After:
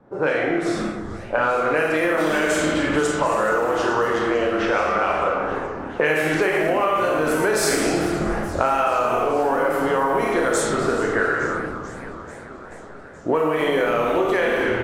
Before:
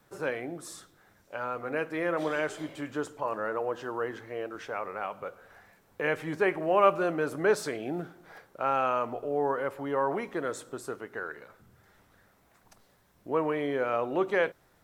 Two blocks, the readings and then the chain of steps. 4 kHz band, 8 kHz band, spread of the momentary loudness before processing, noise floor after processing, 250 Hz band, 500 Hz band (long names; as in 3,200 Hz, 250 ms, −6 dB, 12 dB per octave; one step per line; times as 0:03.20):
+15.0 dB, +17.0 dB, 12 LU, −39 dBFS, +12.0 dB, +9.5 dB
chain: double-tracking delay 32 ms −11.5 dB
automatic gain control gain up to 5 dB
low-shelf EQ 160 Hz −6.5 dB
on a send: echo with shifted repeats 268 ms, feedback 48%, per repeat −130 Hz, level −14 dB
on the sum: four-comb reverb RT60 1.1 s, combs from 26 ms, DRR −1.5 dB
in parallel at +2 dB: brickwall limiter −14 dBFS, peak gain reduction 11.5 dB
on the sum: low-pass that shuts in the quiet parts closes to 670 Hz, open at −12 dBFS
downward compressor 10 to 1, threshold −25 dBFS, peak gain reduction 18 dB
high-shelf EQ 4,300 Hz +11 dB
feedback echo with a swinging delay time 435 ms, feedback 72%, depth 217 cents, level −17 dB
level +7.5 dB